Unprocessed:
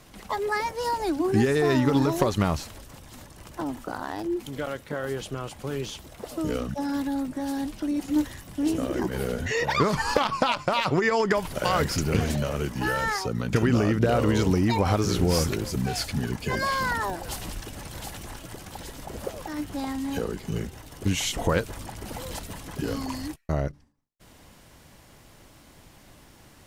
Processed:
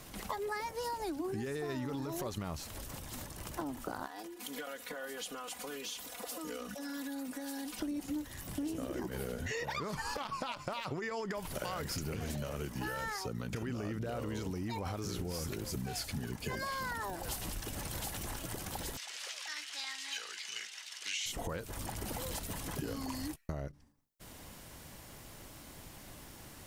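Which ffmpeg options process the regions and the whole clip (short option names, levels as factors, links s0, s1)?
-filter_complex "[0:a]asettb=1/sr,asplit=3[s0][s1][s2];[s0]atrim=end=4.064[s3];[s1]atrim=start=4.06:end=7.79,asetpts=PTS-STARTPTS,afade=t=in:d=0.004:c=qsin,afade=t=out:st=3.726:d=0.004:c=qsin,highpass=f=730:p=1,acompressor=threshold=0.00794:ratio=4:attack=3.2:release=140:knee=1:detection=peak,aecho=1:1:4.1:0.94,atrim=end_sample=164493[s4];[s2]atrim=start=7.786[s5];[s3][s4]acrossfade=d=0.004:c1=hsin:c2=qsin[s6];[s6][s5]acrossfade=d=0.004:c1=qsin:c2=hsin,asettb=1/sr,asplit=3[s7][s8][s9];[s7]atrim=end=18.974[s10];[s8]atrim=start=18.97:end=21.26,asetpts=PTS-STARTPTS,afade=t=in:d=0.004:c=qsin,afade=t=out:st=2.286:d=0.004:c=qsin,acontrast=35,asuperpass=centerf=3600:order=4:qfactor=0.82[s11];[s9]atrim=start=21.256[s12];[s10][s11]acrossfade=d=0.004:c1=hsin:c2=qsin[s13];[s13][s12]acrossfade=d=0.004:c1=qsin:c2=hsin,highshelf=f=9300:g=8.5,alimiter=limit=0.158:level=0:latency=1:release=55,acompressor=threshold=0.0158:ratio=6"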